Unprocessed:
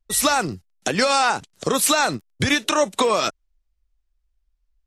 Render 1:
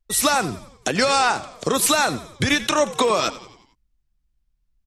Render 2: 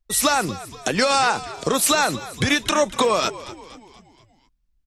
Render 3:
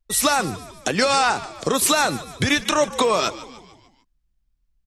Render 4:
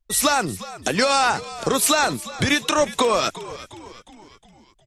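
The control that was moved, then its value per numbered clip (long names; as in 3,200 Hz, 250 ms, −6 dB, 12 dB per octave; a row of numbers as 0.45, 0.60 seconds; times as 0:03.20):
echo with shifted repeats, delay time: 90, 238, 149, 360 milliseconds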